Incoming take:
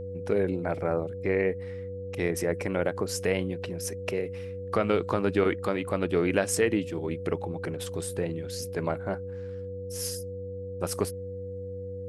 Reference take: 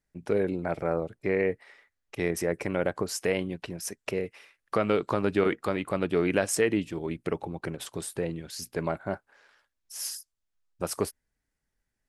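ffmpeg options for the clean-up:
ffmpeg -i in.wav -af "bandreject=frequency=94:width_type=h:width=4,bandreject=frequency=188:width_type=h:width=4,bandreject=frequency=282:width_type=h:width=4,bandreject=frequency=376:width_type=h:width=4,bandreject=frequency=490:width=30" out.wav

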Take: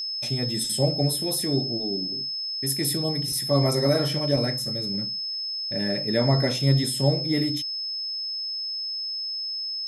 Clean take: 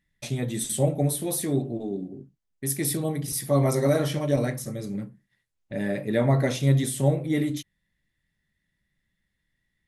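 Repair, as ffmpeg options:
ffmpeg -i in.wav -af "bandreject=frequency=5200:width=30" out.wav

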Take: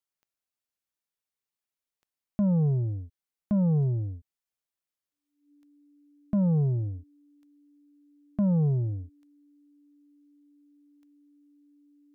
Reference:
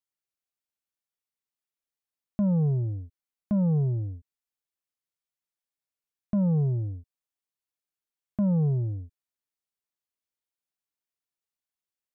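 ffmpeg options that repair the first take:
ffmpeg -i in.wav -af "adeclick=threshold=4,bandreject=frequency=290:width=30" out.wav

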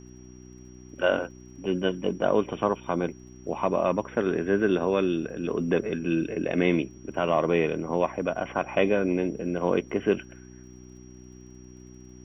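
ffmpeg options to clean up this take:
ffmpeg -i in.wav -af "adeclick=threshold=4,bandreject=frequency=62.2:width_type=h:width=4,bandreject=frequency=124.4:width_type=h:width=4,bandreject=frequency=186.6:width_type=h:width=4,bandreject=frequency=248.8:width_type=h:width=4,bandreject=frequency=311:width_type=h:width=4,bandreject=frequency=373.2:width_type=h:width=4,bandreject=frequency=5700:width=30,agate=range=-21dB:threshold=-39dB" out.wav

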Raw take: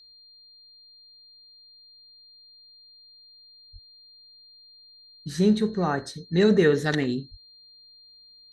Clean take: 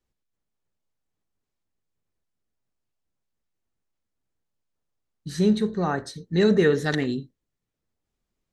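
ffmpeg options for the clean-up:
ffmpeg -i in.wav -filter_complex "[0:a]bandreject=frequency=4200:width=30,asplit=3[link_01][link_02][link_03];[link_01]afade=type=out:start_time=3.72:duration=0.02[link_04];[link_02]highpass=frequency=140:width=0.5412,highpass=frequency=140:width=1.3066,afade=type=in:start_time=3.72:duration=0.02,afade=type=out:start_time=3.84:duration=0.02[link_05];[link_03]afade=type=in:start_time=3.84:duration=0.02[link_06];[link_04][link_05][link_06]amix=inputs=3:normalize=0,asplit=3[link_07][link_08][link_09];[link_07]afade=type=out:start_time=7.3:duration=0.02[link_10];[link_08]highpass=frequency=140:width=0.5412,highpass=frequency=140:width=1.3066,afade=type=in:start_time=7.3:duration=0.02,afade=type=out:start_time=7.42:duration=0.02[link_11];[link_09]afade=type=in:start_time=7.42:duration=0.02[link_12];[link_10][link_11][link_12]amix=inputs=3:normalize=0" out.wav

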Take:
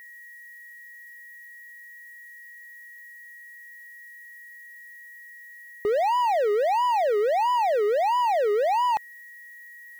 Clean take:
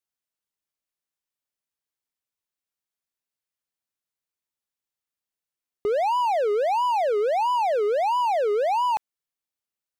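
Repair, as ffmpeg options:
ffmpeg -i in.wav -af "bandreject=frequency=1900:width=30,agate=range=-21dB:threshold=-38dB" out.wav

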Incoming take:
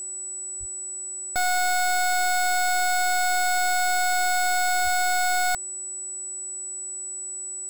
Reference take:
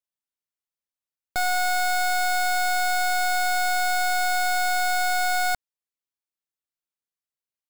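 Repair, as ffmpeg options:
ffmpeg -i in.wav -filter_complex "[0:a]bandreject=frequency=372.5:width_type=h:width=4,bandreject=frequency=745:width_type=h:width=4,bandreject=frequency=1117.5:width_type=h:width=4,bandreject=frequency=1490:width_type=h:width=4,bandreject=frequency=1862.5:width_type=h:width=4,bandreject=frequency=7900:width=30,asplit=3[link_01][link_02][link_03];[link_01]afade=type=out:start_time=0.59:duration=0.02[link_04];[link_02]highpass=frequency=140:width=0.5412,highpass=frequency=140:width=1.3066,afade=type=in:start_time=0.59:duration=0.02,afade=type=out:start_time=0.71:duration=0.02[link_05];[link_03]afade=type=in:start_time=0.71:duration=0.02[link_06];[link_04][link_05][link_06]amix=inputs=3:normalize=0,asplit=3[link_07][link_08][link_09];[link_07]afade=type=out:start_time=4.83:duration=0.02[link_10];[link_08]highpass=frequency=140:width=0.5412,highpass=frequency=140:width=1.3066,afade=type=in:start_time=4.83:duration=0.02,afade=type=out:start_time=4.95:duration=0.02[link_11];[link_09]afade=type=in:start_time=4.95:duration=0.02[link_12];[link_10][link_11][link_12]amix=inputs=3:normalize=0" out.wav

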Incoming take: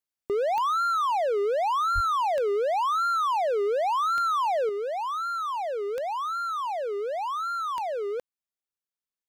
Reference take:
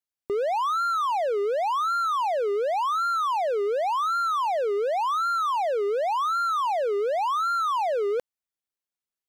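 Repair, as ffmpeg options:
ffmpeg -i in.wav -filter_complex "[0:a]adeclick=threshold=4,asplit=3[link_01][link_02][link_03];[link_01]afade=type=out:start_time=1.94:duration=0.02[link_04];[link_02]highpass=frequency=140:width=0.5412,highpass=frequency=140:width=1.3066,afade=type=in:start_time=1.94:duration=0.02,afade=type=out:start_time=2.06:duration=0.02[link_05];[link_03]afade=type=in:start_time=2.06:duration=0.02[link_06];[link_04][link_05][link_06]amix=inputs=3:normalize=0,asetnsamples=nb_out_samples=441:pad=0,asendcmd='4.69 volume volume 5dB',volume=0dB" out.wav

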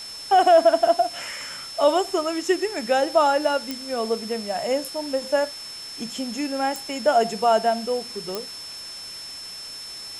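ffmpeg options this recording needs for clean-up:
ffmpeg -i in.wav -af "adeclick=threshold=4,bandreject=frequency=5300:width=30,afwtdn=0.0089" out.wav

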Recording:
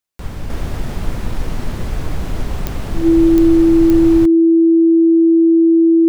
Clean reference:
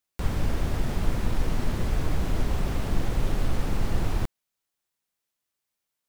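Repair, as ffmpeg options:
ffmpeg -i in.wav -af "adeclick=threshold=4,bandreject=frequency=330:width=30,asetnsamples=nb_out_samples=441:pad=0,asendcmd='0.5 volume volume -4.5dB',volume=0dB" out.wav

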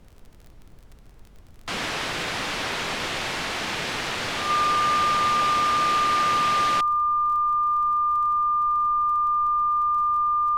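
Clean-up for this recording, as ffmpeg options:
ffmpeg -i in.wav -af "adeclick=threshold=4,bandreject=frequency=1200:width=30,afftdn=noise_reduction=24:noise_floor=-47" out.wav

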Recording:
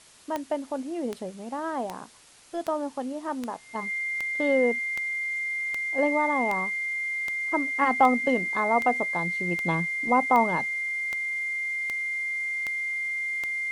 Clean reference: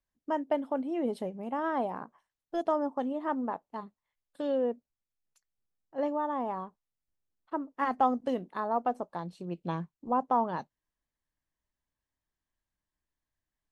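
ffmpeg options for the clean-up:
ffmpeg -i in.wav -af "adeclick=threshold=4,bandreject=frequency=2100:width=30,afwtdn=0.0025,asetnsamples=nb_out_samples=441:pad=0,asendcmd='3.75 volume volume -6dB',volume=0dB" out.wav

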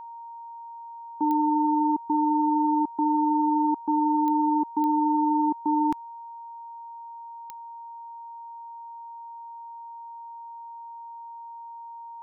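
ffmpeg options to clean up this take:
ffmpeg -i in.wav -af "adeclick=threshold=4,bandreject=frequency=930:width=30" out.wav

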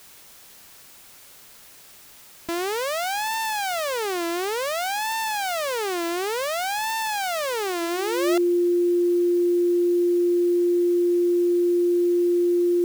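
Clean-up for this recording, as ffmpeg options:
ffmpeg -i in.wav -af "bandreject=frequency=350:width=30,afwtdn=0.004" out.wav

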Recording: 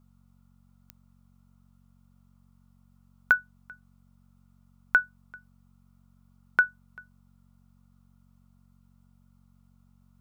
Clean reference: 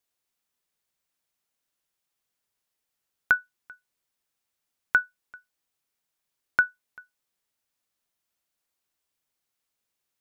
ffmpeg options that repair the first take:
ffmpeg -i in.wav -af "adeclick=threshold=4,bandreject=frequency=46.2:width_type=h:width=4,bandreject=frequency=92.4:width_type=h:width=4,bandreject=frequency=138.6:width_type=h:width=4,bandreject=frequency=184.8:width_type=h:width=4,bandreject=frequency=231:width_type=h:width=4,afftdn=noise_reduction=21:noise_floor=-62" out.wav

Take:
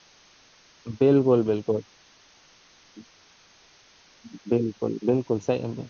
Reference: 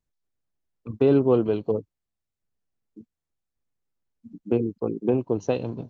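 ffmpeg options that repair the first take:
ffmpeg -i in.wav -af "afwtdn=0.0028" out.wav

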